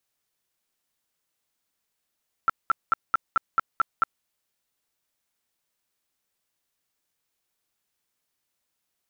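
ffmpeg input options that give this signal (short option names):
-f lavfi -i "aevalsrc='0.168*sin(2*PI*1340*mod(t,0.22))*lt(mod(t,0.22),21/1340)':d=1.76:s=44100"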